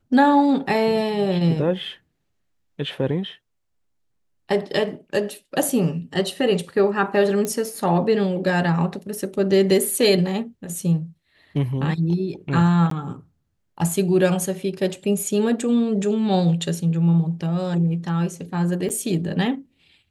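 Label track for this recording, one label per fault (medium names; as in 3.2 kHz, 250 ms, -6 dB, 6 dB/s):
7.450000	7.450000	pop -12 dBFS
12.900000	12.910000	dropout 13 ms
18.890000	18.900000	dropout 7.9 ms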